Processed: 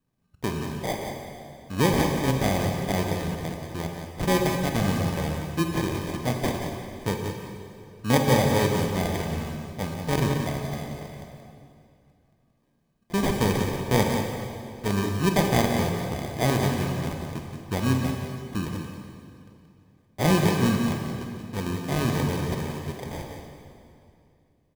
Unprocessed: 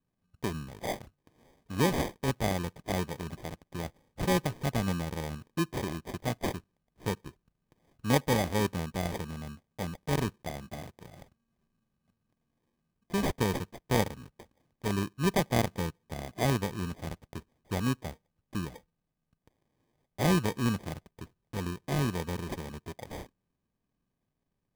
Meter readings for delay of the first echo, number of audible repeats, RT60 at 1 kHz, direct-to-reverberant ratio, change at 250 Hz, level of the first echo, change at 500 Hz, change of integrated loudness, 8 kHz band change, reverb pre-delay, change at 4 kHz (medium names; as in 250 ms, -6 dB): 178 ms, 1, 2.4 s, 1.0 dB, +7.0 dB, -8.0 dB, +7.0 dB, +6.0 dB, +6.5 dB, 24 ms, +6.5 dB